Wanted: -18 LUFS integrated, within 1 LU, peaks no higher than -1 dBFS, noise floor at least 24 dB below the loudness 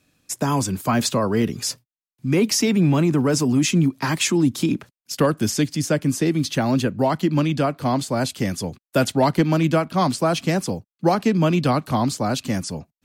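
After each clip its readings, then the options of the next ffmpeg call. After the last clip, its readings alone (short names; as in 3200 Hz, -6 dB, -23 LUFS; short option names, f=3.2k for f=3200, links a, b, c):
loudness -21.0 LUFS; peak -7.5 dBFS; loudness target -18.0 LUFS
-> -af "volume=3dB"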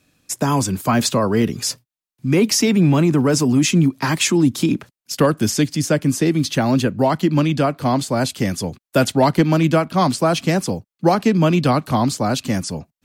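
loudness -18.0 LUFS; peak -4.5 dBFS; noise floor -91 dBFS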